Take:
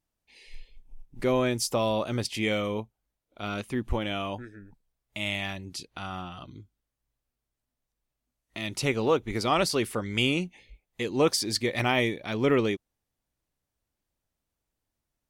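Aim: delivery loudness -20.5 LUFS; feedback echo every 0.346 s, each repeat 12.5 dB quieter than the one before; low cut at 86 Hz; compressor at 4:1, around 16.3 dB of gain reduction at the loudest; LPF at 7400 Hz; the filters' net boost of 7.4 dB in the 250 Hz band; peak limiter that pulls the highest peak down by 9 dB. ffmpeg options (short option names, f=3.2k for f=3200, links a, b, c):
-af "highpass=86,lowpass=7.4k,equalizer=f=250:t=o:g=9,acompressor=threshold=-35dB:ratio=4,alimiter=level_in=5dB:limit=-24dB:level=0:latency=1,volume=-5dB,aecho=1:1:346|692|1038:0.237|0.0569|0.0137,volume=20dB"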